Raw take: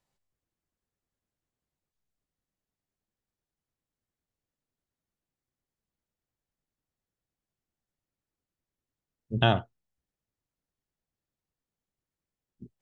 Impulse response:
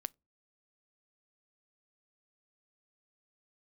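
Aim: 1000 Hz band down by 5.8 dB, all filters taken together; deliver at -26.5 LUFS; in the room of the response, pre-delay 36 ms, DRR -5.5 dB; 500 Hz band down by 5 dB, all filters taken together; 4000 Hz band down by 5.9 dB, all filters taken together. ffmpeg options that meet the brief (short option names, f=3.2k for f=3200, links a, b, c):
-filter_complex "[0:a]equalizer=f=500:t=o:g=-4,equalizer=f=1k:t=o:g=-6.5,equalizer=f=4k:t=o:g=-7.5,asplit=2[a][b];[1:a]atrim=start_sample=2205,adelay=36[c];[b][c]afir=irnorm=-1:irlink=0,volume=8dB[d];[a][d]amix=inputs=2:normalize=0,volume=-3.5dB"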